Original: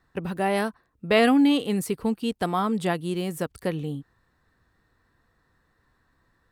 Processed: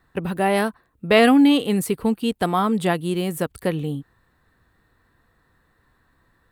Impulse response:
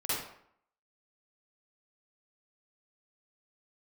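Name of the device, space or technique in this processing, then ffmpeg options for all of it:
exciter from parts: -filter_complex "[0:a]asplit=2[a][b];[b]highpass=f=4.4k:w=0.5412,highpass=f=4.4k:w=1.3066,asoftclip=type=tanh:threshold=-36.5dB,highpass=f=4.6k:p=1,volume=-4dB[c];[a][c]amix=inputs=2:normalize=0,volume=4.5dB"

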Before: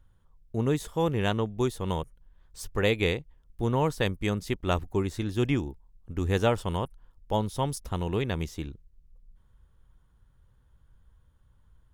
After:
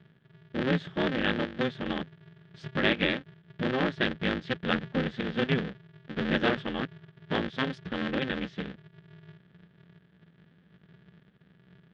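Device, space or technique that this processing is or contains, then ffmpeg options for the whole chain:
ring modulator pedal into a guitar cabinet: -af "aeval=exprs='val(0)*sgn(sin(2*PI*130*n/s))':c=same,highpass=92,equalizer=f=94:t=q:w=4:g=-8,equalizer=f=170:t=q:w=4:g=9,equalizer=f=710:t=q:w=4:g=-5,equalizer=f=1k:t=q:w=4:g=-7,equalizer=f=1.7k:t=q:w=4:g=9,equalizer=f=3.3k:t=q:w=4:g=6,lowpass=f=3.8k:w=0.5412,lowpass=f=3.8k:w=1.3066,volume=-1.5dB"

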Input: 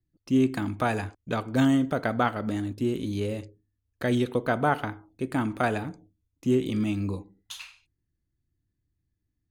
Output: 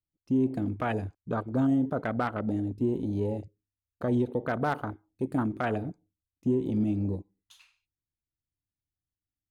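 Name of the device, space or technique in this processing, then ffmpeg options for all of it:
clipper into limiter: -filter_complex "[0:a]afwtdn=0.0316,asoftclip=type=hard:threshold=-13.5dB,alimiter=limit=-18.5dB:level=0:latency=1:release=73,asettb=1/sr,asplit=3[a][b][c];[a]atrim=end=4.534[d];[b]atrim=start=4.53:end=5.43,asetpts=PTS-STARTPTS,afade=t=in:d=0.004:c=qsin,afade=t=out:st=0.896:d=0.004:c=qsin,highshelf=f=6.1k:g=8[e];[c]atrim=start=5.426[f];[d][e]acrossfade=d=0.004:c1=hsin:c2=qsin[g];[g][f]acrossfade=d=0.004:c1=qsin:c2=hsin"

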